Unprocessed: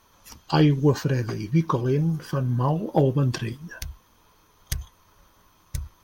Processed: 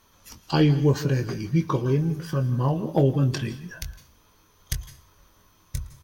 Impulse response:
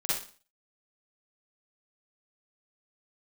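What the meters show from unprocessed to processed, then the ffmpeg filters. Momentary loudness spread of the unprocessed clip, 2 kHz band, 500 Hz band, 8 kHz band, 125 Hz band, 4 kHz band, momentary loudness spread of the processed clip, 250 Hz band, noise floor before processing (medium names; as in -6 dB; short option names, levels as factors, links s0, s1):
17 LU, -0.5 dB, -0.5 dB, +0.5 dB, 0.0 dB, +0.5 dB, 16 LU, -0.5 dB, -60 dBFS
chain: -filter_complex "[0:a]equalizer=f=900:t=o:w=1.3:g=-4,asplit=2[s0][s1];[s1]adelay=22,volume=0.316[s2];[s0][s2]amix=inputs=2:normalize=0,asplit=2[s3][s4];[1:a]atrim=start_sample=2205,adelay=112[s5];[s4][s5]afir=irnorm=-1:irlink=0,volume=0.0794[s6];[s3][s6]amix=inputs=2:normalize=0"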